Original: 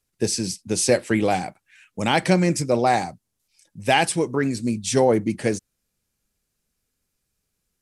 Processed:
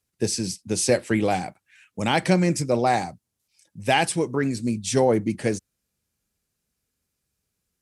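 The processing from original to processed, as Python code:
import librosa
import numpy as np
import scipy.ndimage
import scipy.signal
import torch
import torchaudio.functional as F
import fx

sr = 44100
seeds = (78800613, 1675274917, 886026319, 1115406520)

y = scipy.signal.sosfilt(scipy.signal.butter(2, 59.0, 'highpass', fs=sr, output='sos'), x)
y = fx.low_shelf(y, sr, hz=100.0, db=5.0)
y = F.gain(torch.from_numpy(y), -2.0).numpy()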